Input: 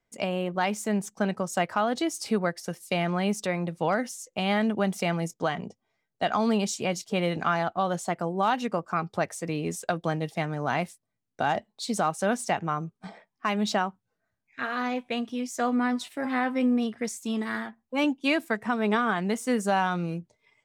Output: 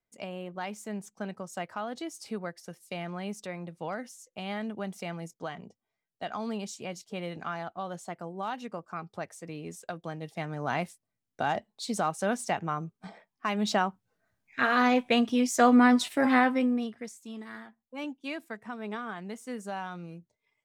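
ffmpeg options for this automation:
-af "volume=6dB,afade=t=in:st=10.16:d=0.55:silence=0.446684,afade=t=in:st=13.54:d=1.17:silence=0.354813,afade=t=out:st=16.3:d=0.36:silence=0.354813,afade=t=out:st=16.66:d=0.48:silence=0.354813"

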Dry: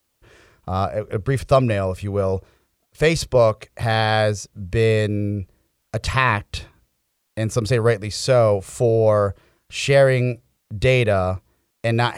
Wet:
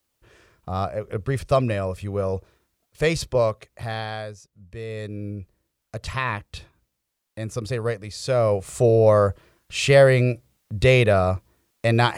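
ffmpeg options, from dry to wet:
-af "volume=13dB,afade=t=out:st=3.25:d=1.05:silence=0.237137,afade=t=in:st=4.87:d=0.44:silence=0.375837,afade=t=in:st=8.2:d=0.68:silence=0.375837"

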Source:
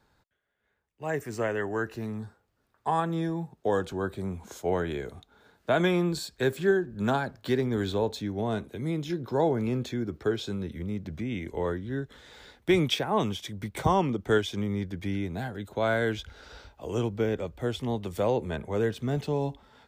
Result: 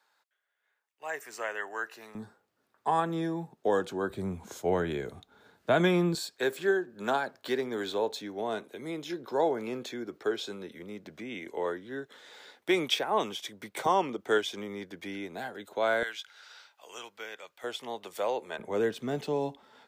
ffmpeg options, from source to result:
-af "asetnsamples=n=441:p=0,asendcmd='2.15 highpass f 210;4.1 highpass f 100;6.15 highpass f 390;16.03 highpass f 1300;17.64 highpass f 610;18.59 highpass f 250',highpass=830"

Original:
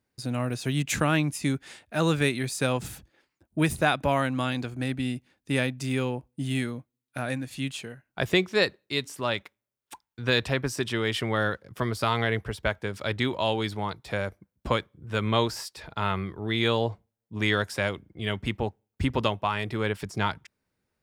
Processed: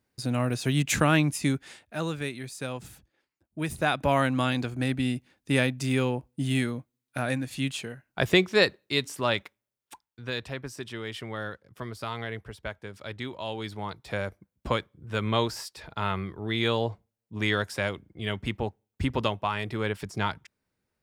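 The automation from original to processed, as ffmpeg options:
-af "volume=20dB,afade=t=out:st=1.35:d=0.77:silence=0.298538,afade=t=in:st=3.59:d=0.64:silence=0.298538,afade=t=out:st=9.37:d=0.92:silence=0.281838,afade=t=in:st=13.44:d=0.73:silence=0.421697"

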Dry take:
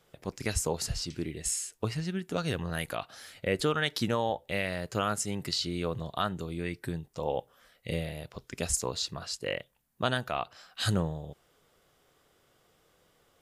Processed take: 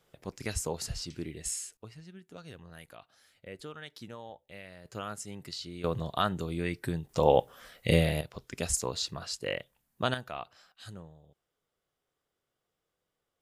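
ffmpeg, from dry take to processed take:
-af "asetnsamples=n=441:p=0,asendcmd='1.77 volume volume -16dB;4.85 volume volume -9dB;5.84 volume volume 2dB;7.09 volume volume 9dB;8.21 volume volume -0.5dB;10.14 volume volume -7dB;10.72 volume volume -18dB',volume=-3.5dB"

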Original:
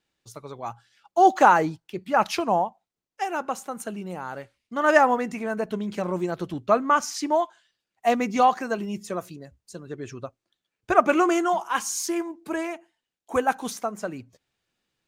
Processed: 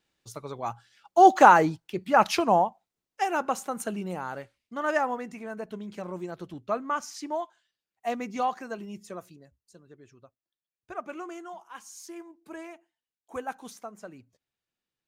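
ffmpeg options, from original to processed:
-af "volume=7.5dB,afade=t=out:st=4.03:d=0.91:silence=0.316228,afade=t=out:st=9.1:d=0.98:silence=0.334965,afade=t=in:st=11.79:d=0.87:silence=0.473151"

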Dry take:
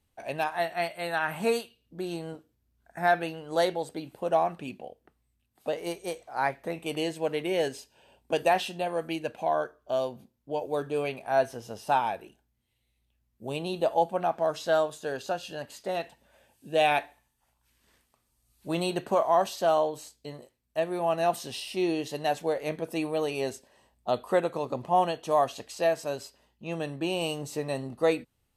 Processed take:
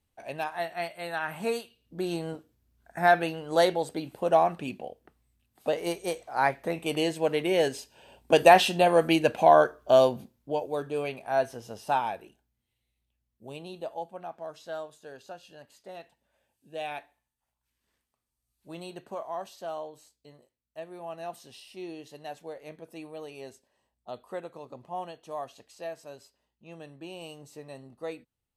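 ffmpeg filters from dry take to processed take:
-af "volume=9.5dB,afade=t=in:st=1.61:d=0.41:silence=0.473151,afade=t=in:st=7.71:d=1.18:silence=0.473151,afade=t=out:st=10.07:d=0.6:silence=0.281838,afade=t=out:st=11.94:d=2.1:silence=0.281838"

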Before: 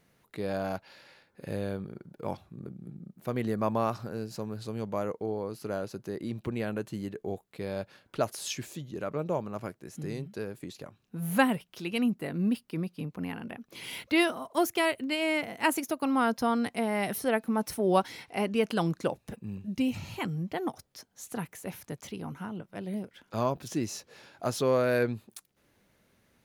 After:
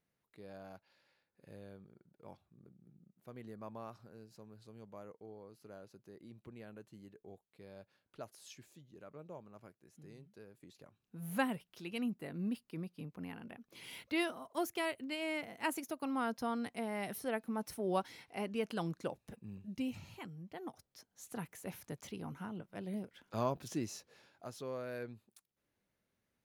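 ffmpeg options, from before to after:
-af "volume=1dB,afade=t=in:st=10.52:d=0.84:silence=0.354813,afade=t=out:st=19.87:d=0.48:silence=0.446684,afade=t=in:st=20.35:d=1.36:silence=0.281838,afade=t=out:st=23.66:d=0.83:silence=0.281838"

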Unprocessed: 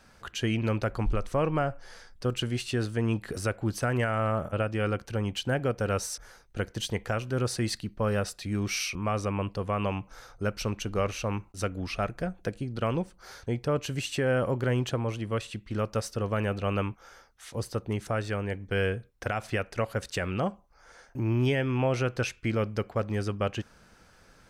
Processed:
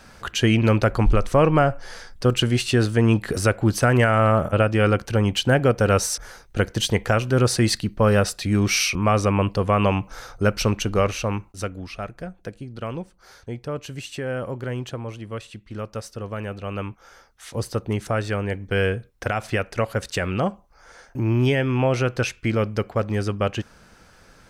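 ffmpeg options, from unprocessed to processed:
-af "volume=18dB,afade=t=out:st=10.66:d=1.23:silence=0.251189,afade=t=in:st=16.69:d=0.89:silence=0.398107"

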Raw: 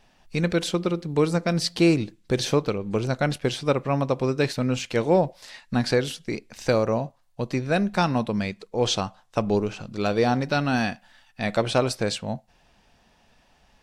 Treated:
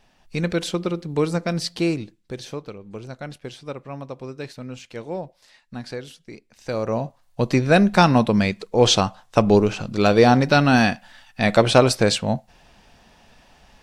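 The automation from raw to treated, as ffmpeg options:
-af "volume=18dB,afade=t=out:st=1.43:d=0.98:silence=0.298538,afade=t=in:st=6.63:d=0.29:silence=0.298538,afade=t=in:st=6.92:d=0.54:silence=0.421697"

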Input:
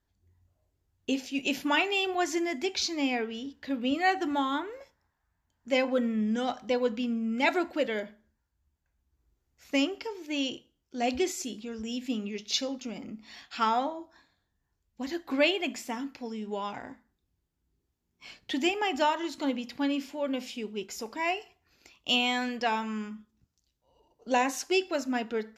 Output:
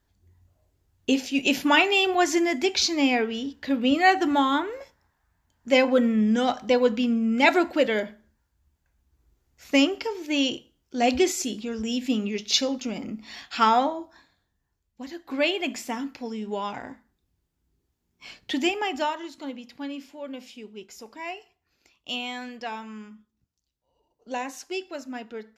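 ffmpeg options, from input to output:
-af "volume=15.5dB,afade=t=out:st=13.81:d=1.35:silence=0.266073,afade=t=in:st=15.16:d=0.57:silence=0.375837,afade=t=out:st=18.52:d=0.82:silence=0.334965"

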